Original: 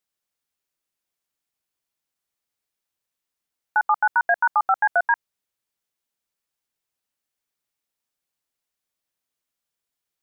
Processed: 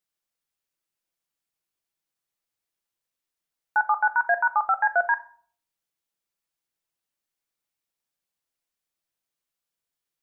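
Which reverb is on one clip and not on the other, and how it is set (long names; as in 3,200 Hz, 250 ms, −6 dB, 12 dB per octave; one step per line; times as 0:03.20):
rectangular room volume 590 cubic metres, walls furnished, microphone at 0.73 metres
level −3 dB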